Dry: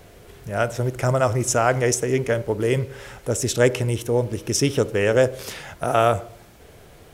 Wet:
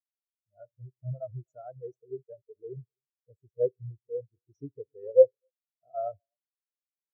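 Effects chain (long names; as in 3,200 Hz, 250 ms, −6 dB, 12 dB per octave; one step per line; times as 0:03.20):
slap from a distant wall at 43 metres, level −16 dB
0:02.08–0:02.56: centre clipping without the shift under −26 dBFS
every bin expanded away from the loudest bin 4 to 1
level −3 dB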